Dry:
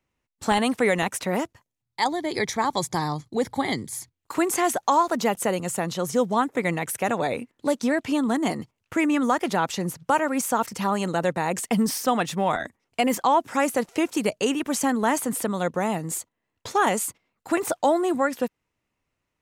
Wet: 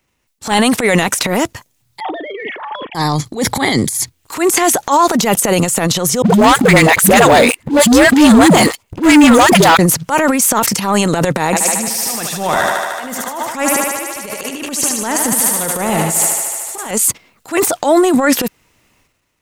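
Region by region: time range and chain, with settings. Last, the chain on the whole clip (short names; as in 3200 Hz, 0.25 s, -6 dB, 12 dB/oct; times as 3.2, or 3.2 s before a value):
2–2.95 sine-wave speech + doubler 38 ms -11.5 dB + compressor 3:1, threshold -37 dBFS
6.22–9.79 dispersion highs, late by 0.117 s, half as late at 320 Hz + sample leveller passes 3 + notch 5600 Hz, Q 17
11.45–16.91 auto swell 0.547 s + thinning echo 75 ms, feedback 82%, high-pass 240 Hz, level -6 dB
whole clip: high shelf 2800 Hz +7 dB; transient shaper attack -12 dB, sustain +11 dB; maximiser +11.5 dB; gain -1 dB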